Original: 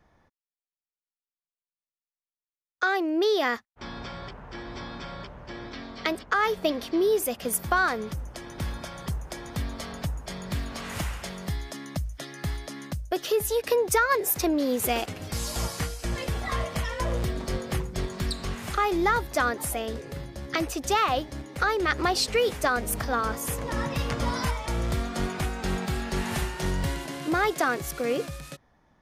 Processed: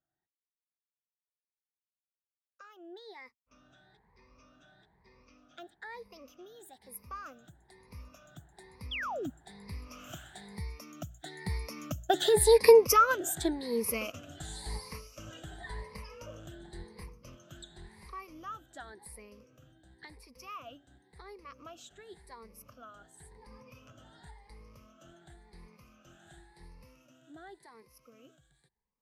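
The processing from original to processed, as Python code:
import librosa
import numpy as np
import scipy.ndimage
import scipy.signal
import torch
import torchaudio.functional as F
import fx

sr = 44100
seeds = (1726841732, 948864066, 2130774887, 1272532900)

y = fx.spec_ripple(x, sr, per_octave=0.88, drift_hz=1.0, depth_db=18)
y = fx.doppler_pass(y, sr, speed_mps=27, closest_m=10.0, pass_at_s=12.47)
y = fx.spec_paint(y, sr, seeds[0], shape='fall', start_s=8.91, length_s=0.39, low_hz=230.0, high_hz=3600.0, level_db=-36.0)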